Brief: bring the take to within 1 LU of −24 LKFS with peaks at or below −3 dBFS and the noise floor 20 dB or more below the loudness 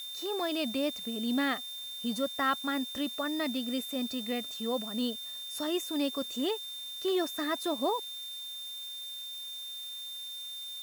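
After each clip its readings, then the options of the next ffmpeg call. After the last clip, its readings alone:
interfering tone 3,600 Hz; level of the tone −39 dBFS; background noise floor −41 dBFS; target noise floor −54 dBFS; integrated loudness −33.5 LKFS; sample peak −17.5 dBFS; target loudness −24.0 LKFS
→ -af "bandreject=frequency=3600:width=30"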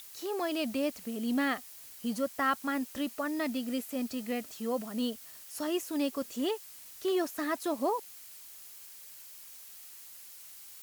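interfering tone none found; background noise floor −50 dBFS; target noise floor −54 dBFS
→ -af "afftdn=noise_reduction=6:noise_floor=-50"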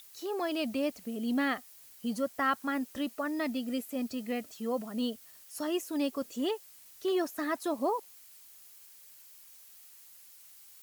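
background noise floor −55 dBFS; integrated loudness −33.5 LKFS; sample peak −18.0 dBFS; target loudness −24.0 LKFS
→ -af "volume=9.5dB"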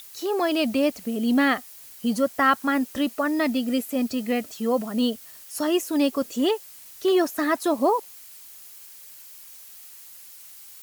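integrated loudness −24.0 LKFS; sample peak −8.5 dBFS; background noise floor −46 dBFS

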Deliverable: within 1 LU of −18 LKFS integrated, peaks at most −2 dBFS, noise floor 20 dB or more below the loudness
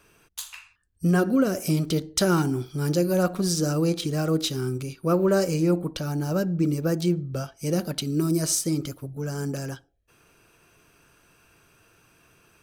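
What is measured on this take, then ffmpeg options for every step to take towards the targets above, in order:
integrated loudness −25.0 LKFS; sample peak −10.5 dBFS; target loudness −18.0 LKFS
→ -af "volume=7dB"

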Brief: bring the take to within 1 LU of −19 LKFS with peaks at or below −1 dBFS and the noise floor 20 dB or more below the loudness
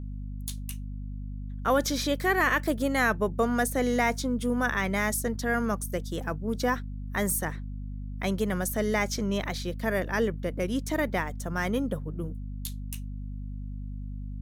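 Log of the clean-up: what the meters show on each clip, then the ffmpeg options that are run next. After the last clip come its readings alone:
mains hum 50 Hz; hum harmonics up to 250 Hz; level of the hum −33 dBFS; integrated loudness −28.5 LKFS; sample peak −13.0 dBFS; target loudness −19.0 LKFS
→ -af "bandreject=frequency=50:width_type=h:width=4,bandreject=frequency=100:width_type=h:width=4,bandreject=frequency=150:width_type=h:width=4,bandreject=frequency=200:width_type=h:width=4,bandreject=frequency=250:width_type=h:width=4"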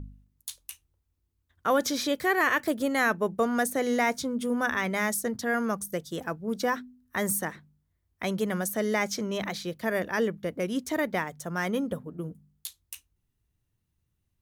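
mains hum none found; integrated loudness −28.5 LKFS; sample peak −13.5 dBFS; target loudness −19.0 LKFS
→ -af "volume=9.5dB"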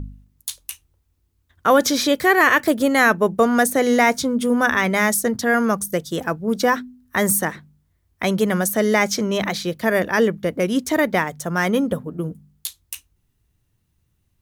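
integrated loudness −19.0 LKFS; sample peak −4.0 dBFS; background noise floor −68 dBFS

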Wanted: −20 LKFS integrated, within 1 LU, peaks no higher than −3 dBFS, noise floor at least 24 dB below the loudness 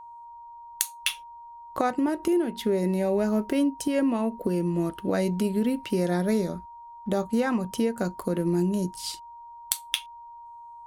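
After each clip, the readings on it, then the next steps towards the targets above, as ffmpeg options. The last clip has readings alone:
interfering tone 940 Hz; level of the tone −42 dBFS; integrated loudness −27.0 LKFS; sample peak −7.0 dBFS; target loudness −20.0 LKFS
→ -af "bandreject=frequency=940:width=30"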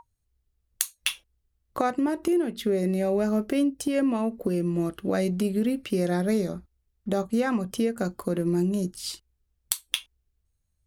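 interfering tone none found; integrated loudness −27.0 LKFS; sample peak −7.0 dBFS; target loudness −20.0 LKFS
→ -af "volume=7dB,alimiter=limit=-3dB:level=0:latency=1"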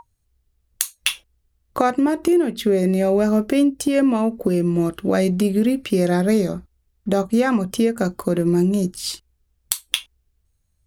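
integrated loudness −20.0 LKFS; sample peak −3.0 dBFS; background noise floor −68 dBFS

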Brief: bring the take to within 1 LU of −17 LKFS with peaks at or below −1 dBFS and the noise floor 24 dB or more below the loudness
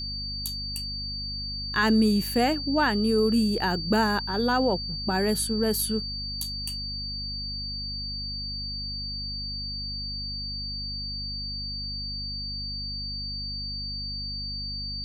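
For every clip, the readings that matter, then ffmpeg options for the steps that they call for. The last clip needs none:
mains hum 50 Hz; hum harmonics up to 250 Hz; level of the hum −35 dBFS; interfering tone 4,600 Hz; level of the tone −32 dBFS; integrated loudness −27.5 LKFS; sample peak −10.5 dBFS; target loudness −17.0 LKFS
→ -af "bandreject=frequency=50:width_type=h:width=4,bandreject=frequency=100:width_type=h:width=4,bandreject=frequency=150:width_type=h:width=4,bandreject=frequency=200:width_type=h:width=4,bandreject=frequency=250:width_type=h:width=4"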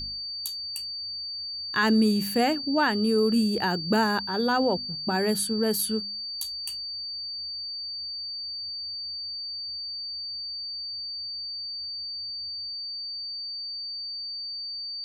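mains hum none found; interfering tone 4,600 Hz; level of the tone −32 dBFS
→ -af "bandreject=frequency=4600:width=30"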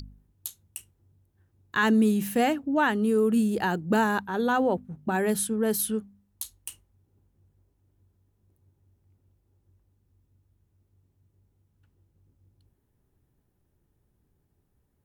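interfering tone none found; integrated loudness −25.5 LKFS; sample peak −11.5 dBFS; target loudness −17.0 LKFS
→ -af "volume=8.5dB"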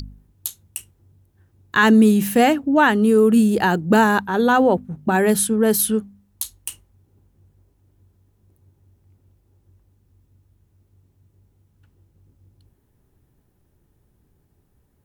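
integrated loudness −17.5 LKFS; sample peak −3.0 dBFS; background noise floor −64 dBFS

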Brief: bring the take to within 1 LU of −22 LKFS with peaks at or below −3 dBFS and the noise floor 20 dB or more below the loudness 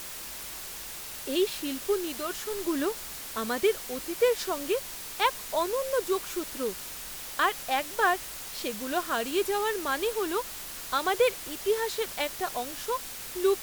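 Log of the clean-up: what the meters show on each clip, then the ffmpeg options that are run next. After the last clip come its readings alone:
background noise floor −40 dBFS; target noise floor −50 dBFS; integrated loudness −30.0 LKFS; sample peak −11.5 dBFS; target loudness −22.0 LKFS
→ -af "afftdn=noise_reduction=10:noise_floor=-40"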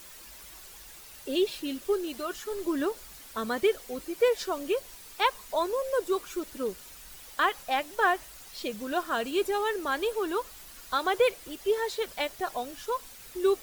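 background noise floor −48 dBFS; target noise floor −50 dBFS
→ -af "afftdn=noise_reduction=6:noise_floor=-48"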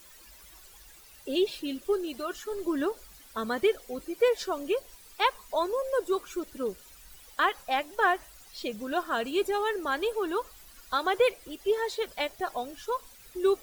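background noise floor −53 dBFS; integrated loudness −30.0 LKFS; sample peak −12.0 dBFS; target loudness −22.0 LKFS
→ -af "volume=8dB"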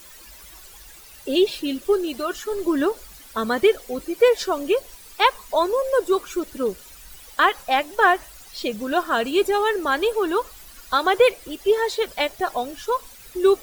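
integrated loudness −22.0 LKFS; sample peak −4.0 dBFS; background noise floor −45 dBFS

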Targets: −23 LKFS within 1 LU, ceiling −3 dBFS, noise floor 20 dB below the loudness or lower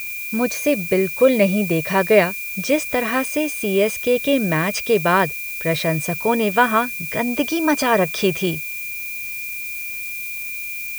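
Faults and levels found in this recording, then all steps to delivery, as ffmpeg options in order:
interfering tone 2,400 Hz; level of the tone −28 dBFS; background noise floor −29 dBFS; target noise floor −40 dBFS; integrated loudness −19.5 LKFS; sample peak −1.5 dBFS; target loudness −23.0 LKFS
→ -af "bandreject=frequency=2400:width=30"
-af "afftdn=noise_reduction=11:noise_floor=-29"
-af "volume=-3.5dB"

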